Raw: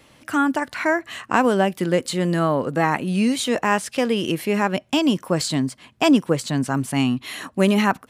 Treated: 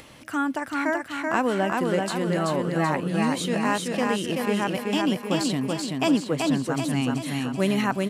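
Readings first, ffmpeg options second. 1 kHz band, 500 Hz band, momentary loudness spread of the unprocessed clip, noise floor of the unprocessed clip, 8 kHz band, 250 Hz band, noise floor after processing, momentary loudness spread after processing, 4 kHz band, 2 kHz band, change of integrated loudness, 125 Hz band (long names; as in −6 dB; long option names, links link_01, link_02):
−4.0 dB, −4.0 dB, 5 LU, −57 dBFS, −4.0 dB, −3.5 dB, −42 dBFS, 4 LU, −4.0 dB, −4.0 dB, −4.0 dB, −3.5 dB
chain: -af "aecho=1:1:382|764|1146|1528|1910|2292|2674:0.708|0.368|0.191|0.0995|0.0518|0.0269|0.014,acompressor=mode=upward:threshold=-32dB:ratio=2.5,volume=-6dB"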